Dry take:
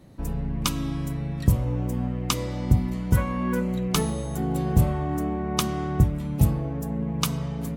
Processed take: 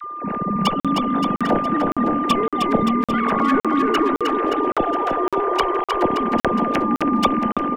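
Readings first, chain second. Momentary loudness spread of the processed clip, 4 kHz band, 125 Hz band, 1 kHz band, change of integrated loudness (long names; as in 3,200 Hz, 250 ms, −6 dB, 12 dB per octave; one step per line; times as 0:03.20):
3 LU, +4.0 dB, −9.0 dB, +15.5 dB, +6.0 dB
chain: three sine waves on the formant tracks
in parallel at +2.5 dB: output level in coarse steps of 19 dB
on the sum: harmonic generator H 6 −23 dB, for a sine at 0 dBFS
gain into a clipping stage and back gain 12 dB
steady tone 1,200 Hz −28 dBFS
all-pass dispersion lows, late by 44 ms, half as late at 790 Hz
on a send: bouncing-ball delay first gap 310 ms, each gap 0.85×, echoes 5
on the sum: regular buffer underruns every 0.56 s, samples 2,048, zero, from 0:00.80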